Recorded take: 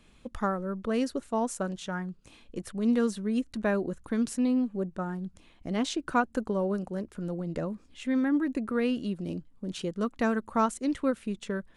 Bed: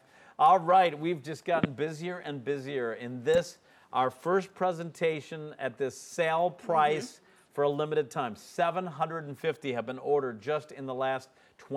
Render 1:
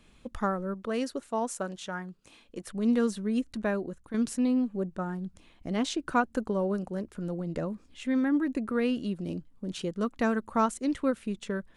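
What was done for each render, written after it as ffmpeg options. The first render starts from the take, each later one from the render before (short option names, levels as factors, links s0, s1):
-filter_complex "[0:a]asettb=1/sr,asplit=3[s0][s1][s2];[s0]atrim=end=0.744[s3];[s1]atrim=start=0.74:end=2.69,asetpts=PTS-STARTPTS,afade=t=in:d=0.004:c=qsin,afade=t=out:st=1.946:d=0.004:c=qsin,lowshelf=f=170:g=-11.5[s4];[s2]atrim=start=2.686[s5];[s3][s4]acrossfade=d=0.004:c1=hsin:c2=qsin[s6];[s6][s5]acrossfade=d=0.004:c1=qsin:c2=hsin,asplit=2[s7][s8];[s7]atrim=end=4.14,asetpts=PTS-STARTPTS,afade=t=out:st=3.49:d=0.65:silence=0.354813[s9];[s8]atrim=start=4.14,asetpts=PTS-STARTPTS,afade=t=in:d=0.004:c=hsin:silence=0.354813[s10];[s9][s10]concat=n=2:v=0:a=1"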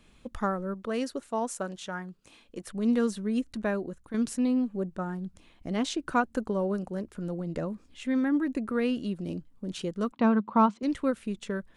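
-filter_complex "[0:a]asettb=1/sr,asplit=3[s0][s1][s2];[s0]atrim=end=10.124[s3];[s1]atrim=start=10.12:end=10.83,asetpts=PTS-STARTPTS,afade=t=in:d=0.004:c=qsin,afade=t=out:st=0.706:d=0.004:c=qsin,highpass=f=110:w=0.5412,highpass=f=110:w=1.3066,equalizer=f=200:t=q:w=4:g=10,equalizer=f=990:t=q:w=4:g=9,equalizer=f=1800:t=q:w=4:g=-7,lowpass=f=4200:w=0.5412,lowpass=f=4200:w=1.3066[s4];[s2]atrim=start=10.826[s5];[s3][s4]acrossfade=d=0.004:c1=hsin:c2=qsin[s6];[s6][s5]acrossfade=d=0.004:c1=qsin:c2=hsin"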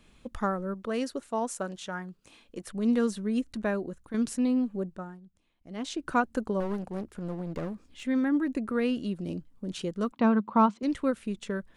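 -filter_complex "[0:a]asettb=1/sr,asplit=3[s0][s1][s2];[s0]atrim=end=6.604[s3];[s1]atrim=start=6.6:end=8.05,asetpts=PTS-STARTPTS,afade=t=in:d=0.004:c=qsin,afade=t=out:st=1.446:d=0.004:c=qsin,aeval=exprs='clip(val(0),-1,0.015)':c=same[s4];[s2]atrim=start=8.046[s5];[s3][s4]acrossfade=d=0.004:c1=hsin:c2=qsin[s6];[s6][s5]acrossfade=d=0.004:c1=qsin:c2=hsin,asplit=3[s7][s8][s9];[s7]atrim=end=5.21,asetpts=PTS-STARTPTS,afade=t=out:st=4.75:d=0.46:silence=0.149624[s10];[s8]atrim=start=5.21:end=5.64,asetpts=PTS-STARTPTS,volume=0.15[s11];[s9]atrim=start=5.64,asetpts=PTS-STARTPTS,afade=t=in:d=0.46:silence=0.149624[s12];[s10][s11][s12]concat=n=3:v=0:a=1"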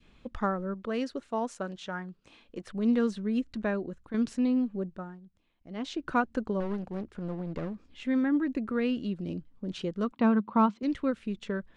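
-af "lowpass=4500,adynamicequalizer=threshold=0.00708:dfrequency=800:dqfactor=0.76:tfrequency=800:tqfactor=0.76:attack=5:release=100:ratio=0.375:range=2:mode=cutabove:tftype=bell"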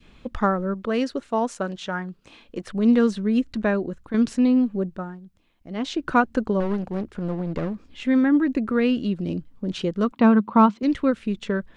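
-af "volume=2.51"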